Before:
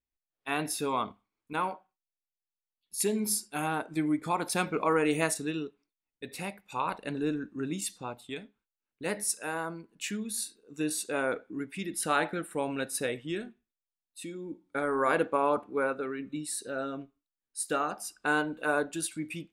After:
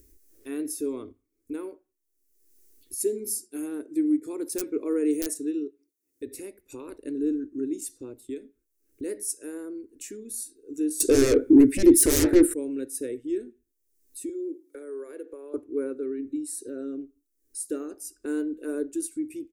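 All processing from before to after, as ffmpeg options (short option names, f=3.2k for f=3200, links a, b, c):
-filter_complex "[0:a]asettb=1/sr,asplit=3[a][b][c];[a]atrim=end=3.444[d];[b]atrim=start=3.44:end=6.27,asetpts=PTS-STARTPTS,afade=t=in:d=0.004:c=qsin,afade=t=out:st=2.826:d=0.004:c=qsin,highpass=130,aeval=exprs='(mod(4.73*val(0)+1,2)-1)/4.73':c=same[e];[c]atrim=start=6.266[f];[d][e]acrossfade=d=0.004:c1=hsin:c2=qsin[g];[g][f]acrossfade=d=0.004:c1=qsin:c2=hsin,asettb=1/sr,asplit=3[h][i][j];[h]atrim=end=11.004[k];[i]atrim=start=11:end=12.54,asetpts=PTS-STARTPTS,afade=t=in:d=0.004:c=qsin,afade=t=out:st=1.536:d=0.004:c=qsin,bass=f=250:g=5,treble=f=4k:g=-4,aeval=exprs='0.211*sin(PI/2*7.94*val(0)/0.211)':c=same[l];[j]atrim=start=12.536[m];[k][l]acrossfade=d=0.004:c1=hsin:c2=qsin[n];[n][m]acrossfade=d=0.004:c1=qsin:c2=hsin,asettb=1/sr,asplit=3[o][p][q];[o]atrim=end=14.294[r];[p]atrim=start=14.29:end=15.54,asetpts=PTS-STARTPTS,afade=t=in:d=0.004:c=qsin,afade=t=out:st=1.246:d=0.004:c=qsin,highpass=f=370:w=0.5412,highpass=f=370:w=1.3066,equalizer=f=12k:t=o:w=0.27:g=5.5,acompressor=threshold=-41dB:ratio=2:attack=3.2:release=140:knee=1:detection=peak[s];[q]atrim=start=15.536[t];[r][s]acrossfade=d=0.004:c1=hsin:c2=qsin[u];[u][t]acrossfade=d=0.004:c1=qsin:c2=hsin,lowshelf=f=140:g=5.5,acompressor=mode=upward:threshold=-31dB:ratio=2.5,firequalizer=gain_entry='entry(100,0);entry(170,-27);entry(260,5);entry(370,9);entry(750,-22);entry(1800,-11);entry(3200,-16);entry(5900,-1);entry(11000,3)':delay=0.05:min_phase=1,volume=-2dB"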